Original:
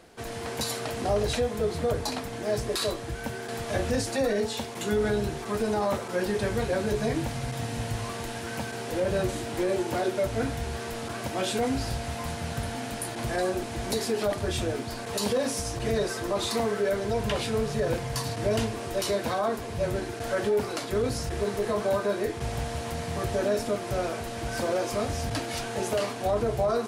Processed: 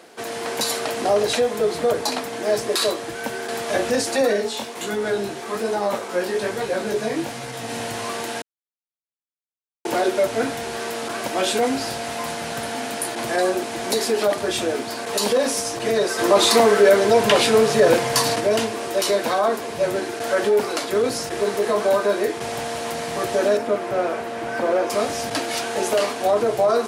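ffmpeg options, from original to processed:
-filter_complex "[0:a]asplit=3[a][b][c];[a]afade=t=out:st=4.36:d=0.02[d];[b]flanger=delay=15:depth=7.9:speed=1.2,afade=t=in:st=4.36:d=0.02,afade=t=out:st=7.68:d=0.02[e];[c]afade=t=in:st=7.68:d=0.02[f];[d][e][f]amix=inputs=3:normalize=0,asplit=3[g][h][i];[g]afade=t=out:st=16.18:d=0.02[j];[h]acontrast=46,afade=t=in:st=16.18:d=0.02,afade=t=out:st=18.39:d=0.02[k];[i]afade=t=in:st=18.39:d=0.02[l];[j][k][l]amix=inputs=3:normalize=0,asettb=1/sr,asplit=3[m][n][o];[m]atrim=end=23.574[p];[n]atrim=start=23.57:end=24.9,asetpts=PTS-STARTPTS,afade=t=in:d=0.004:c=qsin,afade=t=out:st=1.326:d=0.004:c=qsin,acrossover=split=2600[q][r];[r]acompressor=threshold=-54dB:ratio=4:attack=1:release=60[s];[q][s]amix=inputs=2:normalize=0[t];[o]atrim=start=24.896[u];[p][t]acrossfade=d=0.004:c1=hsin:c2=qsin[v];[v][u]acrossfade=d=0.004:c1=qsin:c2=hsin,asplit=3[w][x][y];[w]atrim=end=8.42,asetpts=PTS-STARTPTS,afade=t=out:st=8.416:d=0.004:c=hsin[z];[x]atrim=start=8.42:end=9.85,asetpts=PTS-STARTPTS,volume=0[aa];[y]atrim=start=9.85,asetpts=PTS-STARTPTS,afade=t=in:d=0.004:c=hsin[ab];[z][aa][ab]concat=n=3:v=0:a=1,highpass=280,volume=8dB"

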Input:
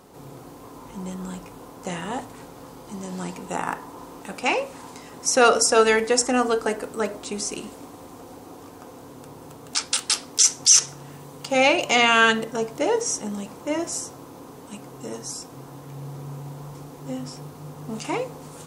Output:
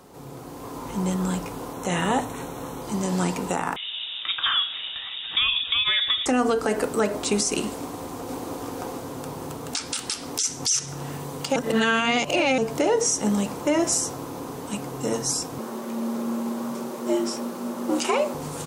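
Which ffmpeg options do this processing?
-filter_complex "[0:a]asettb=1/sr,asplit=3[a][b][c];[a]atrim=end=1.734[d];[b]atrim=start=1.73:end=2.82,asetpts=PTS-STARTPTS,afade=t=in:d=0.004:c=qsin,afade=t=out:st=1.086:d=0.004:c=qsin,asuperstop=centerf=4800:order=12:qfactor=5.3[e];[c]atrim=start=2.816[f];[d][e]acrossfade=d=0.004:c1=hsin:c2=qsin[g];[g][f]acrossfade=d=0.004:c1=qsin:c2=hsin,asettb=1/sr,asplit=3[h][i][j];[h]atrim=end=3.764[k];[i]atrim=start=3.76:end=6.26,asetpts=PTS-STARTPTS,afade=t=in:d=0.004:c=qsin,afade=t=out:st=2.496:d=0.004:c=qsin,lowpass=f=3.3k:t=q:w=0.5098,lowpass=f=3.3k:t=q:w=0.6013,lowpass=f=3.3k:t=q:w=0.9,lowpass=f=3.3k:t=q:w=2.563,afreqshift=-3900[l];[j]atrim=start=6.256[m];[k][l]acrossfade=d=0.004:c1=hsin:c2=qsin[n];[n][m]acrossfade=d=0.004:c1=qsin:c2=hsin,asplit=2[o][p];[p]afade=t=in:st=7.79:d=0.01,afade=t=out:st=8.48:d=0.01,aecho=0:1:490|980|1470|1960|2450|2940|3430|3920:0.668344|0.367589|0.202174|0.111196|0.0611576|0.0336367|0.0185002|0.0101751[q];[o][q]amix=inputs=2:normalize=0,asettb=1/sr,asplit=3[r][s][t];[r]atrim=end=15.584[u];[s]atrim=start=15.58:end=18.34,asetpts=PTS-STARTPTS,afade=t=in:d=0.004:c=qsin,afade=t=out:st=2.756:d=0.004:c=qsin,afreqshift=90[v];[t]atrim=start=18.336[w];[u][v]acrossfade=d=0.004:c1=hsin:c2=qsin[x];[x][w]acrossfade=d=0.004:c1=qsin:c2=hsin,asplit=3[y][z][aa];[y]atrim=end=11.562[ab];[z]atrim=start=11.558:end=12.582,asetpts=PTS-STARTPTS,areverse[ac];[aa]atrim=start=12.578[ad];[ab][ac]acrossfade=d=0.004:c1=hsin:c2=hsin[ae];[ae][ad]acrossfade=d=0.004:c1=hsin:c2=hsin,acrossover=split=280[af][ag];[ag]acompressor=threshold=-23dB:ratio=6[ah];[af][ah]amix=inputs=2:normalize=0,alimiter=limit=-20.5dB:level=0:latency=1:release=136,dynaudnorm=f=240:g=5:m=7dB,volume=1dB"

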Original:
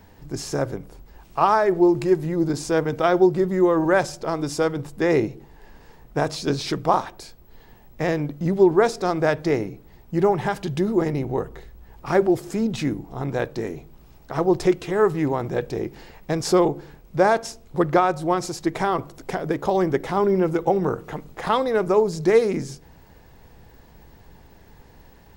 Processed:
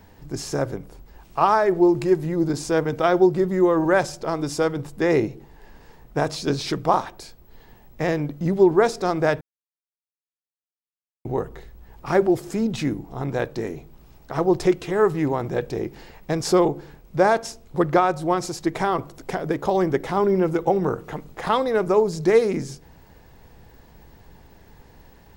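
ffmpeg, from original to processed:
-filter_complex "[0:a]asplit=3[a][b][c];[a]atrim=end=9.41,asetpts=PTS-STARTPTS,afade=t=out:st=9.406:d=0.004:c=hsin[d];[b]atrim=start=9.41:end=11.25,asetpts=PTS-STARTPTS,volume=0[e];[c]atrim=start=11.25,asetpts=PTS-STARTPTS,afade=t=in:d=0.004:c=hsin[f];[d][e][f]concat=n=3:v=0:a=1"

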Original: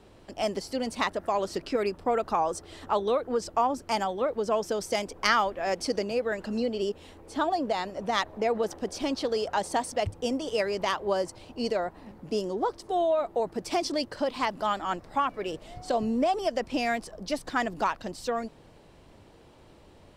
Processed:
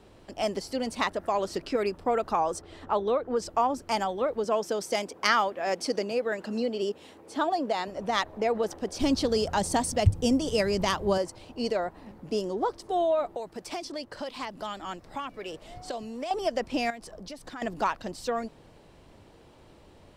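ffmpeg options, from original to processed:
-filter_complex "[0:a]asettb=1/sr,asplit=3[a][b][c];[a]atrim=end=2.614[d];[b]atrim=start=2.61:end=3.37,asetpts=PTS-STARTPTS,afade=t=in:d=0.004:c=qsin,afade=t=out:st=0.756:d=0.004:c=qsin,highshelf=f=4.1k:g=-11[e];[c]atrim=start=3.366[f];[d][e]acrossfade=d=0.004:c1=hsin:c2=qsin[g];[g][f]acrossfade=d=0.004:c1=qsin:c2=hsin,asettb=1/sr,asplit=3[h][i][j];[h]atrim=end=4.444[k];[i]atrim=start=4.44:end=7.88,asetpts=PTS-STARTPTS,afade=t=in:d=0.004:c=qsin,afade=t=out:st=3.436:d=0.004:c=qsin,highpass=160[l];[j]atrim=start=7.876[m];[k][l]acrossfade=d=0.004:c1=hsin:c2=qsin[n];[n][m]acrossfade=d=0.004:c1=qsin:c2=hsin,asettb=1/sr,asplit=3[o][p][q];[o]atrim=end=8.994[r];[p]atrim=start=8.99:end=11.18,asetpts=PTS-STARTPTS,afade=t=in:d=0.004:c=qsin,afade=t=out:st=2.186:d=0.004:c=qsin,bass=f=250:g=14,treble=f=4k:g=7[s];[q]atrim=start=11.176[t];[r][s]acrossfade=d=0.004:c1=hsin:c2=qsin[u];[u][t]acrossfade=d=0.004:c1=qsin:c2=hsin,asettb=1/sr,asplit=3[v][w][x];[v]atrim=end=13.254[y];[w]atrim=start=13.25:end=16.31,asetpts=PTS-STARTPTS,afade=t=in:d=0.004:c=qsin,afade=t=out:st=3.056:d=0.004:c=qsin,acrossover=split=530|2100[z][aa][ab];[z]acompressor=threshold=-41dB:ratio=4[ac];[aa]acompressor=threshold=-38dB:ratio=4[ad];[ab]acompressor=threshold=-41dB:ratio=4[ae];[ac][ad][ae]amix=inputs=3:normalize=0[af];[x]atrim=start=16.306[ag];[y][af]acrossfade=d=0.004:c1=hsin:c2=qsin[ah];[ah][ag]acrossfade=d=0.004:c1=qsin:c2=hsin,asettb=1/sr,asplit=3[ai][aj][ak];[ai]atrim=end=16.904[al];[aj]atrim=start=16.9:end=17.62,asetpts=PTS-STARTPTS,afade=t=in:d=0.004:c=qsin,afade=t=out:st=0.716:d=0.004:c=qsin,acompressor=threshold=-39dB:ratio=4:attack=3.2:release=140:knee=1:detection=peak[am];[ak]atrim=start=17.616[an];[al][am]acrossfade=d=0.004:c1=hsin:c2=qsin[ao];[ao][an]acrossfade=d=0.004:c1=qsin:c2=hsin"

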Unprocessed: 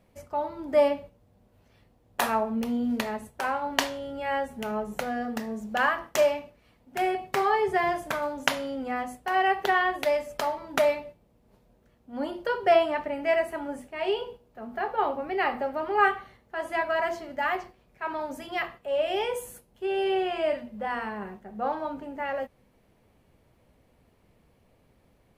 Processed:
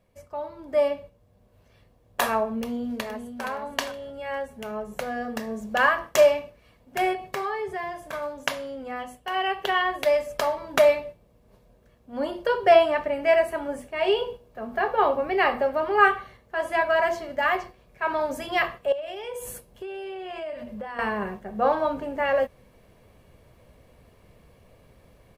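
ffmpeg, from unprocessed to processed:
-filter_complex "[0:a]asplit=2[a][b];[b]afade=t=in:st=2.62:d=0.01,afade=t=out:st=3.44:d=0.01,aecho=0:1:470|940|1410:0.501187|0.100237|0.0200475[c];[a][c]amix=inputs=2:normalize=0,asettb=1/sr,asplit=3[d][e][f];[d]atrim=end=7.134[g];[e]atrim=start=7.13:end=8.13,asetpts=PTS-STARTPTS,afade=t=in:d=0.004:c=qsin,afade=t=out:st=0.996:d=0.004:c=qsin,acompressor=threshold=-38dB:ratio=1.5:attack=3.2:release=140:knee=1:detection=peak[h];[f]atrim=start=8.126[i];[g][h]acrossfade=d=0.004:c1=hsin:c2=qsin[j];[j][i]acrossfade=d=0.004:c1=qsin:c2=hsin,asettb=1/sr,asplit=3[k][l][m];[k]atrim=end=8.994[n];[l]atrim=start=8.99:end=9.82,asetpts=PTS-STARTPTS,afade=t=in:d=0.004:c=qsin,afade=t=out:st=0.826:d=0.004:c=qsin,equalizer=f=3k:t=o:w=0.24:g=10.5[o];[m]atrim=start=9.816[p];[n][o]acrossfade=d=0.004:c1=hsin:c2=qsin[q];[q][p]acrossfade=d=0.004:c1=qsin:c2=hsin,asettb=1/sr,asplit=3[r][s][t];[r]atrim=end=18.924[u];[s]atrim=start=18.92:end=20.99,asetpts=PTS-STARTPTS,afade=t=in:d=0.004:c=qsin,afade=t=out:st=2.066:d=0.004:c=qsin,acompressor=threshold=-39dB:ratio=16:attack=3.2:release=140:knee=1:detection=peak[v];[t]atrim=start=20.986[w];[u][v]acrossfade=d=0.004:c1=hsin:c2=qsin[x];[x][w]acrossfade=d=0.004:c1=qsin:c2=hsin,aecho=1:1:1.8:0.31,dynaudnorm=f=800:g=3:m=11.5dB,volume=-4dB"

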